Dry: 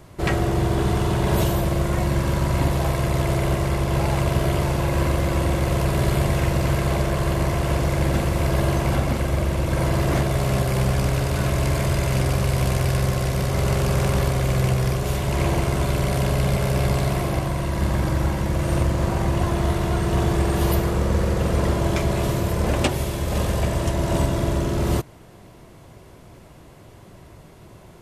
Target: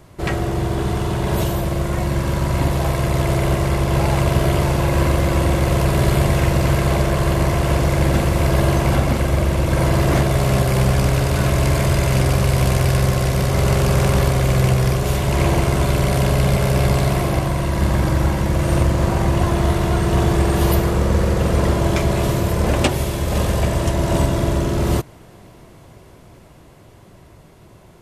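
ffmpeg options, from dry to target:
-af "dynaudnorm=f=420:g=13:m=1.78"

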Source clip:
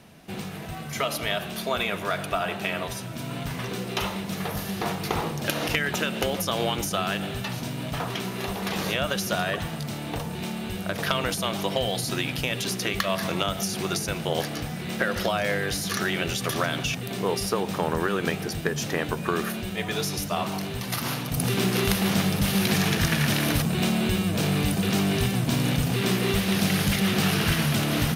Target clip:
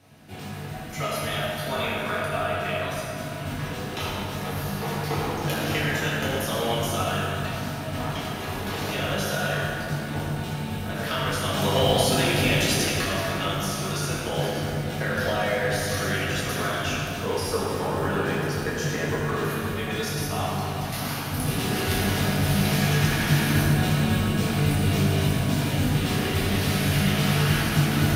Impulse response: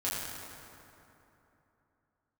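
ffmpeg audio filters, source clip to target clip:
-filter_complex "[0:a]asettb=1/sr,asplit=3[s0][s1][s2];[s0]atrim=end=11.534[s3];[s1]atrim=start=11.53:end=12.85,asetpts=PTS-STARTPTS,afade=t=in:d=0.004:c=qsin,afade=t=out:st=1.316:d=0.004:c=qsin,acontrast=67[s4];[s2]atrim=start=12.846[s5];[s3][s4]acrossfade=d=0.004:c1=hsin:c2=qsin[s6];[s6][s5]acrossfade=d=0.004:c1=qsin:c2=hsin[s7];[1:a]atrim=start_sample=2205[s8];[s7][s8]afir=irnorm=-1:irlink=0,volume=0.501"

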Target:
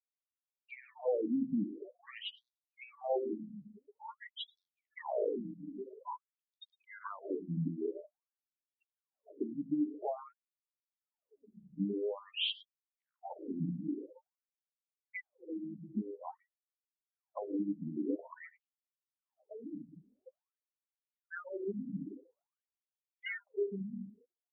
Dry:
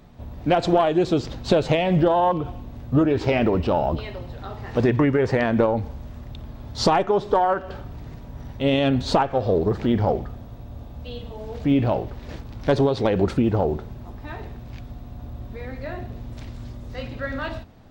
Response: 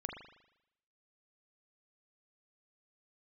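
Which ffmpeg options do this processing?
-filter_complex "[0:a]bandreject=f=60:t=h:w=6,bandreject=f=120:t=h:w=6,bandreject=f=180:t=h:w=6,bandreject=f=240:t=h:w=6,bandreject=f=300:t=h:w=6,bandreject=f=360:t=h:w=6,bandreject=f=420:t=h:w=6,bandreject=f=480:t=h:w=6,bandreject=f=540:t=h:w=6,afftfilt=real='re*gte(hypot(re,im),0.0251)':imag='im*gte(hypot(re,im),0.0251)':win_size=1024:overlap=0.75,equalizer=f=4400:w=2.1:g=9.5,aecho=1:1:7.3:0.41,asplit=2[s0][s1];[s1]aecho=0:1:80:0.119[s2];[s0][s2]amix=inputs=2:normalize=0,dynaudnorm=f=650:g=5:m=6.31,alimiter=limit=0.299:level=0:latency=1:release=479,acrossover=split=150|590[s3][s4][s5];[s3]acompressor=threshold=0.0224:ratio=4[s6];[s4]acompressor=threshold=0.0562:ratio=4[s7];[s5]acompressor=threshold=0.0316:ratio=4[s8];[s6][s7][s8]amix=inputs=3:normalize=0,asetrate=32193,aresample=44100,asubboost=boost=6:cutoff=76,afftfilt=real='re*between(b*sr/1024,210*pow(4800/210,0.5+0.5*sin(2*PI*0.49*pts/sr))/1.41,210*pow(4800/210,0.5+0.5*sin(2*PI*0.49*pts/sr))*1.41)':imag='im*between(b*sr/1024,210*pow(4800/210,0.5+0.5*sin(2*PI*0.49*pts/sr))/1.41,210*pow(4800/210,0.5+0.5*sin(2*PI*0.49*pts/sr))*1.41)':win_size=1024:overlap=0.75,volume=0.668"

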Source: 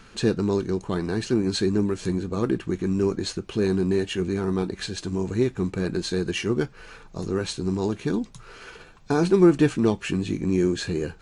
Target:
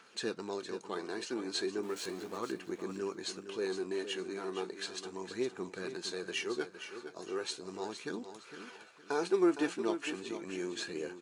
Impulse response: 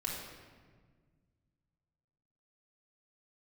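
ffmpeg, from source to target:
-filter_complex "[0:a]asettb=1/sr,asplit=3[s0][s1][s2];[s0]atrim=end=1.834[s3];[s1]atrim=start=1.83:end=2.38,asetpts=PTS-STARTPTS,afade=t=in:d=0.004:c=qsin,afade=t=out:st=0.546:d=0.004:c=qsin,aeval=exprs='val(0)+0.5*0.0168*sgn(val(0))':c=same[s4];[s2]atrim=start=2.376[s5];[s3][s4]acrossfade=d=0.004:c1=hsin:c2=qsin[s6];[s6][s5]acrossfade=d=0.004:c1=qsin:c2=hsin,highpass=460,aphaser=in_gain=1:out_gain=1:delay=3.6:decay=0.31:speed=0.36:type=triangular,aecho=1:1:462|924|1386:0.316|0.0949|0.0285,volume=0.398"

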